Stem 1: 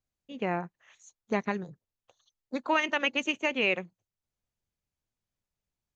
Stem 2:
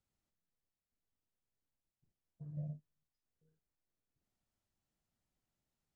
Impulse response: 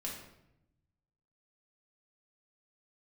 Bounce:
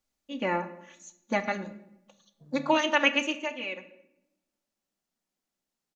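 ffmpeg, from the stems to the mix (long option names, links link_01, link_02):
-filter_complex "[0:a]lowshelf=frequency=270:gain=-5.5,aecho=1:1:3.5:0.94,volume=-1dB,afade=type=out:start_time=3.06:duration=0.51:silence=0.237137,asplit=2[link_01][link_02];[link_02]volume=-6.5dB[link_03];[1:a]highpass=frequency=190:width=0.5412,highpass=frequency=190:width=1.3066,volume=2.5dB[link_04];[2:a]atrim=start_sample=2205[link_05];[link_03][link_05]afir=irnorm=-1:irlink=0[link_06];[link_01][link_04][link_06]amix=inputs=3:normalize=0,equalizer=frequency=5800:width=1.5:gain=3"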